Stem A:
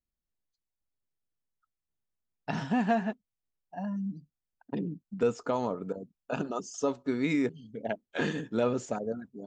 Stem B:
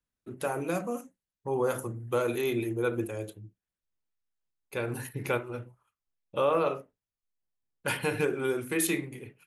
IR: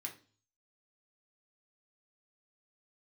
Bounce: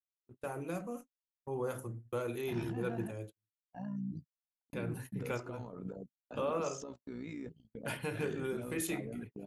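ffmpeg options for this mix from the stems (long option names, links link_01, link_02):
-filter_complex "[0:a]acompressor=threshold=-30dB:ratio=6,alimiter=level_in=11.5dB:limit=-24dB:level=0:latency=1:release=37,volume=-11.5dB,tremolo=f=59:d=0.667,volume=0dB[link_01];[1:a]volume=-10dB[link_02];[link_01][link_02]amix=inputs=2:normalize=0,agate=range=-43dB:threshold=-48dB:ratio=16:detection=peak,lowshelf=frequency=170:gain=8.5"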